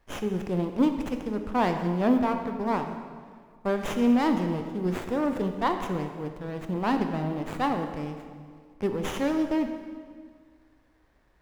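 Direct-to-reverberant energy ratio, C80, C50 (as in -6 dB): 6.0 dB, 8.0 dB, 7.0 dB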